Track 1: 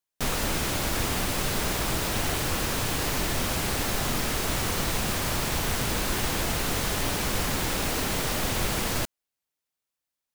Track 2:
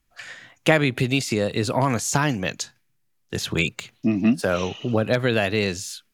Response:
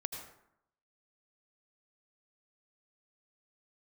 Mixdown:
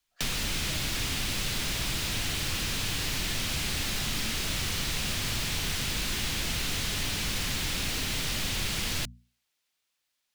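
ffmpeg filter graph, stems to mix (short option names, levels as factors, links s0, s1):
-filter_complex "[0:a]equalizer=f=3300:t=o:w=2.5:g=9.5,bandreject=f=60:t=h:w=6,bandreject=f=120:t=h:w=6,bandreject=f=180:t=h:w=6,bandreject=f=240:t=h:w=6,asoftclip=type=tanh:threshold=0.112,volume=1.33[s0];[1:a]volume=0.119[s1];[s0][s1]amix=inputs=2:normalize=0,acrossover=split=110|260|1900[s2][s3][s4][s5];[s2]acompressor=threshold=0.0251:ratio=4[s6];[s3]acompressor=threshold=0.01:ratio=4[s7];[s4]acompressor=threshold=0.00562:ratio=4[s8];[s5]acompressor=threshold=0.0251:ratio=4[s9];[s6][s7][s8][s9]amix=inputs=4:normalize=0"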